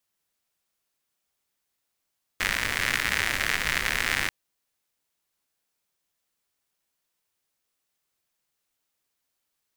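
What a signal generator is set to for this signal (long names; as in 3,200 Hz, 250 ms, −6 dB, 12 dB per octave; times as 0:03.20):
rain-like ticks over hiss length 1.89 s, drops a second 120, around 1,900 Hz, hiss −8 dB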